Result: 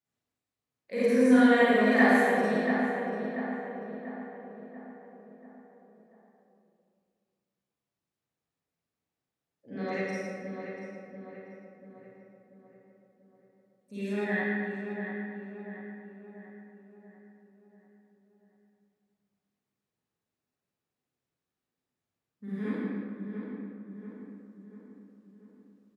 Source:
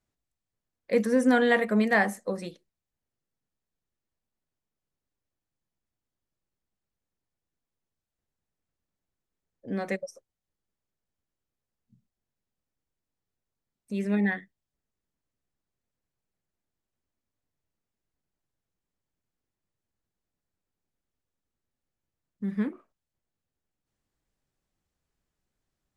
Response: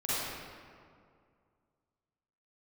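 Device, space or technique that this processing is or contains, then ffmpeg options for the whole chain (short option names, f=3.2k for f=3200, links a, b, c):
PA in a hall: -filter_complex "[0:a]asettb=1/sr,asplit=3[a][b][c];[a]atrim=end=9.684[d];[b]atrim=start=9.68:end=10.09,asetpts=PTS-STARTPTS,afade=t=in:d=0.004:c=qsin,afade=t=out:st=0.406:d=0.004:c=qsin,lowpass=f=5.6k:w=0.5412,lowpass=f=5.6k:w=1.3066[e];[c]atrim=start=10.086[f];[d][e]acrossfade=d=0.004:c1=hsin:c2=qsin[g];[g][f]acrossfade=d=0.004:c1=qsin:c2=hsin,highpass=110,equalizer=f=3k:t=o:w=1.9:g=3,aecho=1:1:110:0.398[h];[1:a]atrim=start_sample=2205[i];[h][i]afir=irnorm=-1:irlink=0,asplit=2[j][k];[k]adelay=688,lowpass=f=2.1k:p=1,volume=-7dB,asplit=2[l][m];[m]adelay=688,lowpass=f=2.1k:p=1,volume=0.52,asplit=2[n][o];[o]adelay=688,lowpass=f=2.1k:p=1,volume=0.52,asplit=2[p][q];[q]adelay=688,lowpass=f=2.1k:p=1,volume=0.52,asplit=2[r][s];[s]adelay=688,lowpass=f=2.1k:p=1,volume=0.52,asplit=2[t][u];[u]adelay=688,lowpass=f=2.1k:p=1,volume=0.52[v];[j][l][n][p][r][t][v]amix=inputs=7:normalize=0,volume=-8.5dB"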